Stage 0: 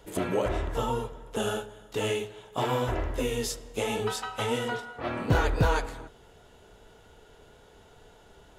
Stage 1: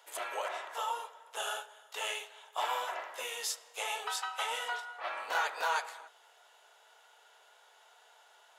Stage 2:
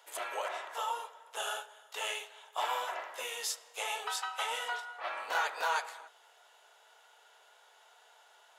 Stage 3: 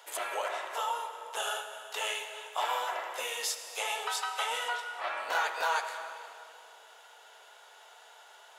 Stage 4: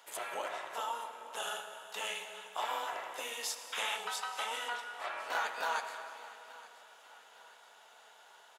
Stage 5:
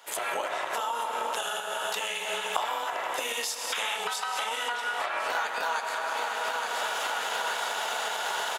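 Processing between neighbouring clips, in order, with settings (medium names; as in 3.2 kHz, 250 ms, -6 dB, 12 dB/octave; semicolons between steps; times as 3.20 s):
high-pass 720 Hz 24 dB/octave; trim -1.5 dB
no audible change
reverberation RT60 2.3 s, pre-delay 54 ms, DRR 10 dB; in parallel at +1 dB: compression, threshold -44 dBFS, peak gain reduction 16 dB
painted sound noise, 3.72–3.97 s, 860–3800 Hz -34 dBFS; AM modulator 230 Hz, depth 35%; feedback delay 874 ms, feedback 50%, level -19.5 dB; trim -2.5 dB
recorder AGC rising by 79 dB/s; trim +4.5 dB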